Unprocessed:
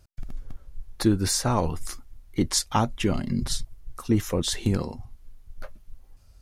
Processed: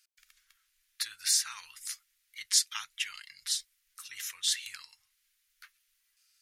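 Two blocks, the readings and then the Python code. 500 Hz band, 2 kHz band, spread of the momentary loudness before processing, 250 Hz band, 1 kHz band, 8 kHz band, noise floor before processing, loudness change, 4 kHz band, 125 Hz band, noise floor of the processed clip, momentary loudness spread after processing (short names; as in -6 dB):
under -40 dB, -2.5 dB, 20 LU, under -40 dB, -20.0 dB, 0.0 dB, -54 dBFS, -5.0 dB, 0.0 dB, under -40 dB, -76 dBFS, 19 LU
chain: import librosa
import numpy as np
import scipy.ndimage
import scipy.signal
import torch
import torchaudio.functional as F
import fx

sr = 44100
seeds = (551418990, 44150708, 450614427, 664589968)

y = scipy.signal.sosfilt(scipy.signal.cheby2(4, 50, 680.0, 'highpass', fs=sr, output='sos'), x)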